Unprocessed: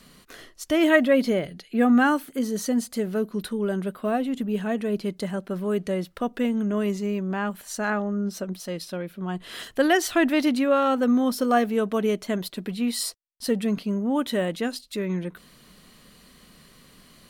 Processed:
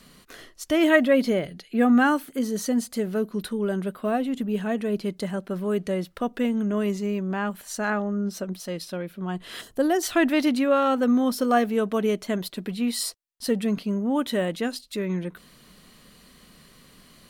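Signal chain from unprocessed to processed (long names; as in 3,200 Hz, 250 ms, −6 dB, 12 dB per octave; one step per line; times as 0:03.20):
0:09.61–0:10.03: parametric band 2,300 Hz −12.5 dB 2 octaves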